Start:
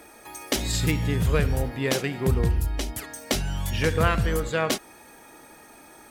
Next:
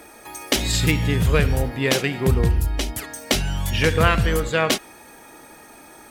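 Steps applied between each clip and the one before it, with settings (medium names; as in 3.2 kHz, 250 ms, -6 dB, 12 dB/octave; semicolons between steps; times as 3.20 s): dynamic bell 2.8 kHz, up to +4 dB, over -40 dBFS, Q 1.1; trim +4 dB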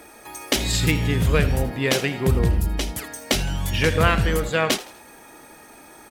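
frequency-shifting echo 81 ms, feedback 36%, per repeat +130 Hz, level -17 dB; trim -1 dB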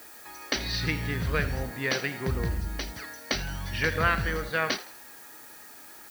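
rippled Chebyshev low-pass 6.1 kHz, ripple 9 dB; added noise blue -48 dBFS; trim -1 dB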